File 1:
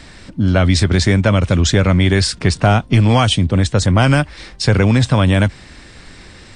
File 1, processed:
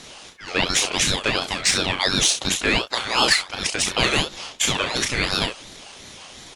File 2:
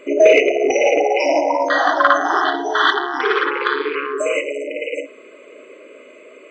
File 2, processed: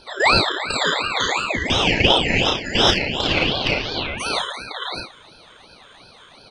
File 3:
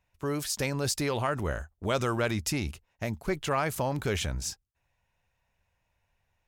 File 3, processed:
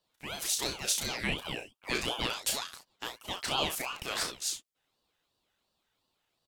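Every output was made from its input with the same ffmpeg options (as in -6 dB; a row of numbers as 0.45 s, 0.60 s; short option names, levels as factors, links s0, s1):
-filter_complex "[0:a]highpass=1100,acontrast=44,asplit=2[s0][s1];[s1]aecho=0:1:33|66:0.596|0.316[s2];[s0][s2]amix=inputs=2:normalize=0,aeval=exprs='val(0)*sin(2*PI*1500*n/s+1500*0.35/2.8*sin(2*PI*2.8*n/s))':c=same,volume=0.794"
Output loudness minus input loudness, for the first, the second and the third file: -6.0 LU, -2.0 LU, -2.0 LU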